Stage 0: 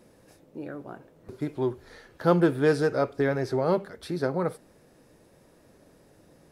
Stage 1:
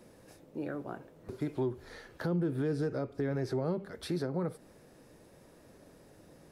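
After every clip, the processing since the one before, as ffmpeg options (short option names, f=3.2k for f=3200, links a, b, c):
-filter_complex "[0:a]acrossover=split=370[a][b];[b]acompressor=threshold=-34dB:ratio=10[c];[a][c]amix=inputs=2:normalize=0,alimiter=limit=-24dB:level=0:latency=1:release=151"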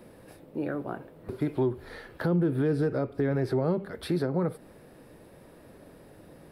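-af "equalizer=f=6.4k:w=1.8:g=-12.5,volume=6dB"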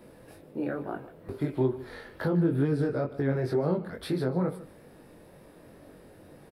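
-af "flanger=delay=20:depth=3.9:speed=2.2,aecho=1:1:151:0.141,volume=2.5dB"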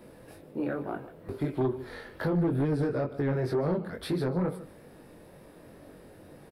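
-af "aeval=exprs='0.178*sin(PI/2*1.58*val(0)/0.178)':c=same,volume=-7dB"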